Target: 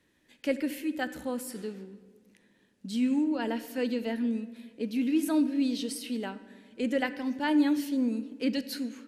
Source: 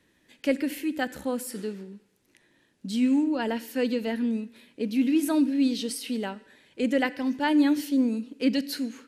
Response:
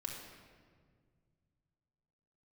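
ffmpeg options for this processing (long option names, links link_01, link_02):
-filter_complex "[0:a]asplit=2[link_01][link_02];[1:a]atrim=start_sample=2205,lowpass=3200,adelay=13[link_03];[link_02][link_03]afir=irnorm=-1:irlink=0,volume=-11.5dB[link_04];[link_01][link_04]amix=inputs=2:normalize=0,volume=-4dB"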